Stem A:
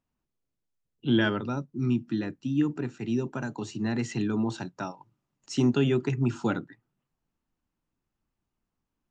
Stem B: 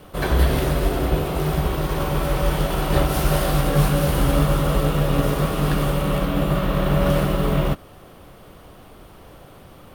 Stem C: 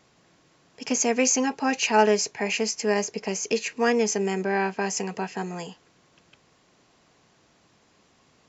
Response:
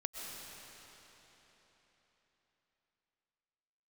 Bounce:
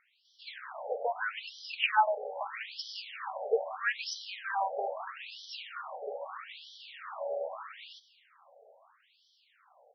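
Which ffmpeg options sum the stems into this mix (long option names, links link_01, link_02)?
-filter_complex "[0:a]aphaser=in_gain=1:out_gain=1:delay=3.6:decay=0.51:speed=0.22:type=sinusoidal,volume=-4.5dB[link_01];[1:a]aeval=exprs='clip(val(0),-1,0.158)':channel_layout=same,aexciter=amount=1.5:drive=7.9:freq=4300,adelay=250,volume=-11dB,asplit=2[link_02][link_03];[link_03]volume=-15.5dB[link_04];[2:a]volume=-2dB[link_05];[3:a]atrim=start_sample=2205[link_06];[link_04][link_06]afir=irnorm=-1:irlink=0[link_07];[link_01][link_02][link_05][link_07]amix=inputs=4:normalize=0,afftfilt=real='re*between(b*sr/1024,580*pow(4300/580,0.5+0.5*sin(2*PI*0.78*pts/sr))/1.41,580*pow(4300/580,0.5+0.5*sin(2*PI*0.78*pts/sr))*1.41)':imag='im*between(b*sr/1024,580*pow(4300/580,0.5+0.5*sin(2*PI*0.78*pts/sr))/1.41,580*pow(4300/580,0.5+0.5*sin(2*PI*0.78*pts/sr))*1.41)':win_size=1024:overlap=0.75"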